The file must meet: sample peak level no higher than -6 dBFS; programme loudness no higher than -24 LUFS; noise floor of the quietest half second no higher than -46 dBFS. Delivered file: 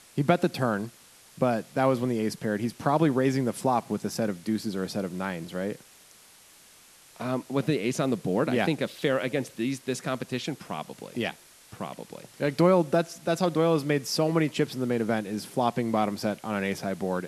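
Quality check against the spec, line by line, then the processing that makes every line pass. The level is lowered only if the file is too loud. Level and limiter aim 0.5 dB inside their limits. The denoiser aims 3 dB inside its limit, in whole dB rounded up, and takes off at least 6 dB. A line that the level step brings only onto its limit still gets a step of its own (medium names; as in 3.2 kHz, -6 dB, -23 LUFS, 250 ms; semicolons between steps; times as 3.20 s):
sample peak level -7.5 dBFS: pass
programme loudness -27.5 LUFS: pass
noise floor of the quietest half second -54 dBFS: pass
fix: none needed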